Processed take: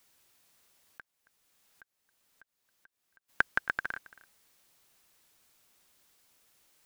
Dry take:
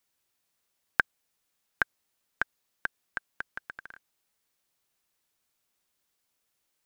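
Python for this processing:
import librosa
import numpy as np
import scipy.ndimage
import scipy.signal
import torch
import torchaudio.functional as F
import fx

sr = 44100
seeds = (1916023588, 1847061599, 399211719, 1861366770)

y = fx.auto_swell(x, sr, attack_ms=790.0, at=(1.0, 3.28), fade=0.02)
y = fx.over_compress(y, sr, threshold_db=-33.0, ratio=-0.5)
y = y + 10.0 ** (-20.5 / 20.0) * np.pad(y, (int(273 * sr / 1000.0), 0))[:len(y)]
y = y * librosa.db_to_amplitude(5.5)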